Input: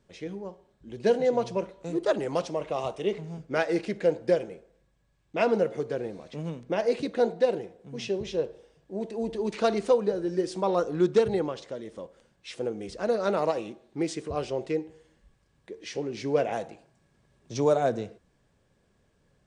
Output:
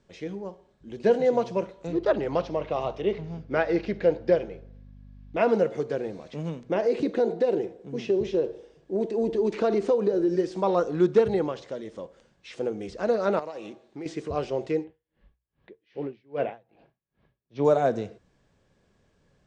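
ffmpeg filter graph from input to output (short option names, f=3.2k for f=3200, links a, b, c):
-filter_complex "[0:a]asettb=1/sr,asplit=3[a][b][c];[a]atrim=end=1.874[d];[b]atrim=start=1.87:end=5.37,asetpts=PTS-STARTPTS,afade=t=in:d=0.004:c=qsin,afade=t=out:st=3.496:d=0.004:c=qsin,aeval=exprs='val(0)+0.00398*(sin(2*PI*50*n/s)+sin(2*PI*2*50*n/s)/2+sin(2*PI*3*50*n/s)/3+sin(2*PI*4*50*n/s)/4+sin(2*PI*5*50*n/s)/5)':c=same,lowpass=f=5.3k:w=0.5412,lowpass=f=5.3k:w=1.3066[e];[c]atrim=start=5.366[f];[d][e]acrossfade=d=0.004:c1=hsin:c2=qsin[g];[g][f]acrossfade=d=0.004:c1=qsin:c2=hsin,asettb=1/sr,asplit=3[h][i][j];[h]atrim=end=6.754[k];[i]atrim=start=6.75:end=10.36,asetpts=PTS-STARTPTS,afade=t=in:d=0.004:c=qsin,afade=t=out:st=3.606:d=0.004:c=qsin,equalizer=f=360:w=1.6:g=8.5,acompressor=threshold=-22dB:ratio=3:attack=3.2:release=140:knee=1:detection=peak[l];[j]atrim=start=10.356[m];[k][l]acrossfade=d=0.004:c1=hsin:c2=qsin[n];[n][m]acrossfade=d=0.004:c1=qsin:c2=hsin,asettb=1/sr,asplit=3[o][p][q];[o]atrim=end=13.394[r];[p]atrim=start=13.39:end=14.06,asetpts=PTS-STARTPTS,afade=t=in:d=0.004:c=qsin,afade=t=out:st=0.666:d=0.004:c=qsin,acompressor=threshold=-34dB:ratio=6:attack=3.2:release=140:knee=1:detection=peak,lowshelf=f=160:g=-9[s];[q]atrim=start=14.056[t];[r][s]acrossfade=d=0.004:c1=hsin:c2=qsin[u];[u][t]acrossfade=d=0.004:c1=qsin:c2=hsin,asettb=1/sr,asplit=3[v][w][x];[v]atrim=end=14.844[y];[w]atrim=start=14.84:end=17.65,asetpts=PTS-STARTPTS,afade=t=in:d=0.004:c=qsin,afade=t=out:st=2.806:d=0.004:c=qsin,lowpass=f=3.6k:w=0.5412,lowpass=f=3.6k:w=1.3066,aeval=exprs='val(0)*pow(10,-32*(0.5-0.5*cos(2*PI*2.5*n/s))/20)':c=same[z];[x]atrim=start=17.646[aa];[y][z]acrossfade=d=0.004:c1=hsin:c2=qsin[ab];[ab][aa]acrossfade=d=0.004:c1=qsin:c2=hsin,acrossover=split=2500[ac][ad];[ad]acompressor=threshold=-48dB:ratio=4:attack=1:release=60[ae];[ac][ae]amix=inputs=2:normalize=0,lowpass=f=7.8k:w=0.5412,lowpass=f=7.8k:w=1.3066,bandreject=f=60:t=h:w=6,bandreject=f=120:t=h:w=6,volume=2dB"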